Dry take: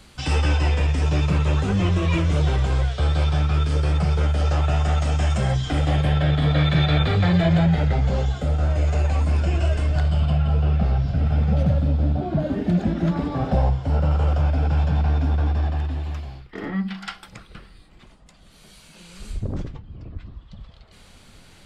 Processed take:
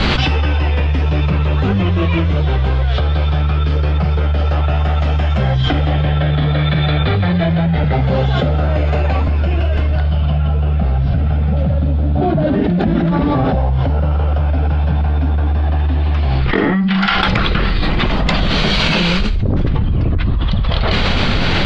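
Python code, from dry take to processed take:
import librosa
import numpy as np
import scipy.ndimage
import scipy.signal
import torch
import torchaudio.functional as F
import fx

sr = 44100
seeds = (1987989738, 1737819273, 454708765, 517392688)

y = fx.highpass(x, sr, hz=82.0, slope=24, at=(7.84, 9.28))
y = scipy.signal.sosfilt(scipy.signal.butter(4, 4100.0, 'lowpass', fs=sr, output='sos'), y)
y = fx.env_flatten(y, sr, amount_pct=100)
y = F.gain(torch.from_numpy(y), 1.0).numpy()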